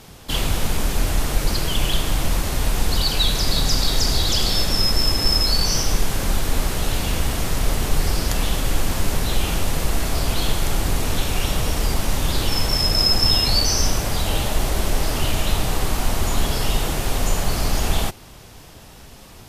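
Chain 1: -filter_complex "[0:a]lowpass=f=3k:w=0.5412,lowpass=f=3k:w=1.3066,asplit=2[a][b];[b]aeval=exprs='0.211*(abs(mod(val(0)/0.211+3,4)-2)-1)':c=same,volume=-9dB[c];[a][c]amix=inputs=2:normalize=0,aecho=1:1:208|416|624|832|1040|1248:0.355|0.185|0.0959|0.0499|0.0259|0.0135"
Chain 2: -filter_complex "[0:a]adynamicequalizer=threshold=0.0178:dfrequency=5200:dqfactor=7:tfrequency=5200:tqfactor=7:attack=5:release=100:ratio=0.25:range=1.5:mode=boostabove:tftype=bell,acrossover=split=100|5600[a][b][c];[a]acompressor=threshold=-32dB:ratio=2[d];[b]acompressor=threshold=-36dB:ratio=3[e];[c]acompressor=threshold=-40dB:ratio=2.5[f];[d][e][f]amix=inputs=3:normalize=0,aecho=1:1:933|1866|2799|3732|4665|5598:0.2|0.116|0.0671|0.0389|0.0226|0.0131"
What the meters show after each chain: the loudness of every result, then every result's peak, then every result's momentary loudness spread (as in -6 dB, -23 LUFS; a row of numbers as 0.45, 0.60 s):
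-22.0, -30.0 LUFS; -5.0, -13.5 dBFS; 2, 5 LU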